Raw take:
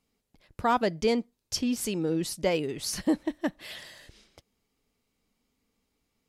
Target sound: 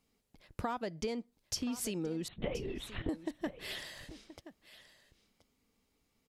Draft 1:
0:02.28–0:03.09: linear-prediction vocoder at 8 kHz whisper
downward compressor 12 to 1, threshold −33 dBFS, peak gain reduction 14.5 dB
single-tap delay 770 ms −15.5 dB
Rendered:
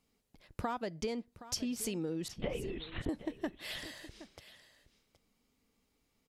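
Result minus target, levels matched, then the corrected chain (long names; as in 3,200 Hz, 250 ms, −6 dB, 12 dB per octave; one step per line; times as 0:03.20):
echo 256 ms early
0:02.28–0:03.09: linear-prediction vocoder at 8 kHz whisper
downward compressor 12 to 1, threshold −33 dBFS, peak gain reduction 14.5 dB
single-tap delay 1,026 ms −15.5 dB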